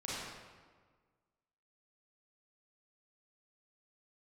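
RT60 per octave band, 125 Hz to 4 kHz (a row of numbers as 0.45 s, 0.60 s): 1.7 s, 1.7 s, 1.6 s, 1.5 s, 1.3 s, 1.0 s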